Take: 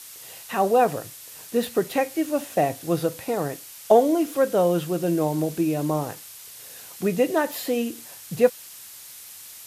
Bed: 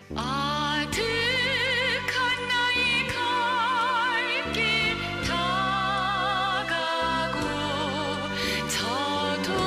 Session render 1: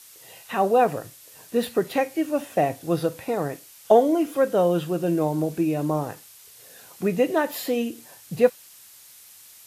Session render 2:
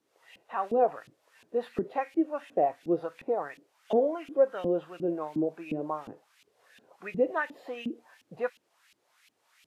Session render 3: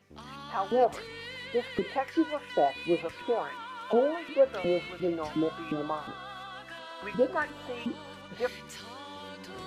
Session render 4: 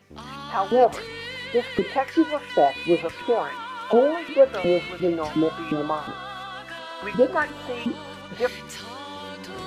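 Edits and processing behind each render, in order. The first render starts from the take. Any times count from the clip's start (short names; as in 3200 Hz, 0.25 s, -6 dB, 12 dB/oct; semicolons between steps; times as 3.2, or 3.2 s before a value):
noise print and reduce 6 dB
LFO band-pass saw up 2.8 Hz 230–2900 Hz
add bed -17 dB
gain +7 dB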